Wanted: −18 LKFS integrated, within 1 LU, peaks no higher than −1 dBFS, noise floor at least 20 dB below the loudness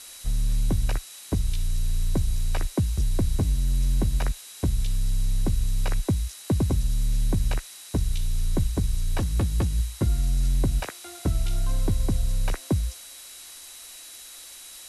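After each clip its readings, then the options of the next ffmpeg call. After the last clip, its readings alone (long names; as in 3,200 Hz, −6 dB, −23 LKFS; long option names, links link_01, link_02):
interfering tone 3,900 Hz; level of the tone −50 dBFS; background noise floor −44 dBFS; target noise floor −48 dBFS; integrated loudness −27.5 LKFS; sample peak −14.5 dBFS; target loudness −18.0 LKFS
→ -af "bandreject=frequency=3900:width=30"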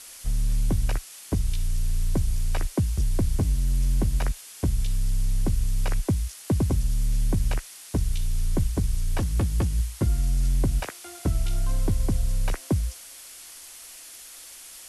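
interfering tone none found; background noise floor −45 dBFS; target noise floor −48 dBFS
→ -af "afftdn=noise_reduction=6:noise_floor=-45"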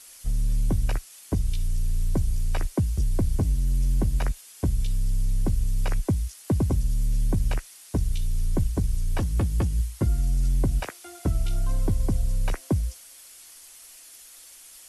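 background noise floor −48 dBFS; integrated loudness −27.5 LKFS; sample peak −15.0 dBFS; target loudness −18.0 LKFS
→ -af "volume=9.5dB"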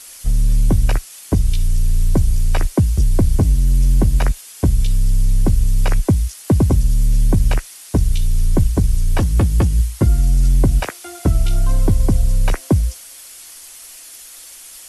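integrated loudness −18.0 LKFS; sample peak −5.5 dBFS; background noise floor −39 dBFS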